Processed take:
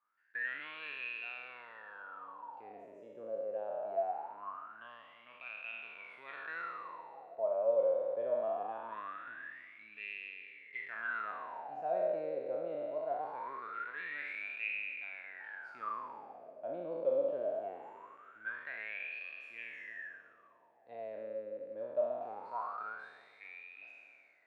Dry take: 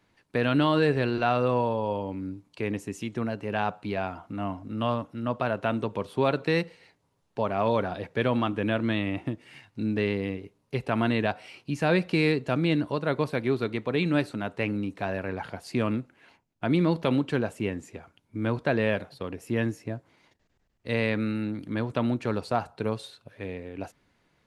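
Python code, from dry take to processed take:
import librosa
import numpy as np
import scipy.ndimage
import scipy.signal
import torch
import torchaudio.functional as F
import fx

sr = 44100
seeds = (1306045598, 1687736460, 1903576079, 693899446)

y = fx.spec_trails(x, sr, decay_s=2.5)
y = fx.echo_stepped(y, sr, ms=299, hz=400.0, octaves=0.7, feedback_pct=70, wet_db=-11.0)
y = fx.wah_lfo(y, sr, hz=0.22, low_hz=540.0, high_hz=2500.0, q=20.0)
y = F.gain(torch.from_numpy(y), 1.0).numpy()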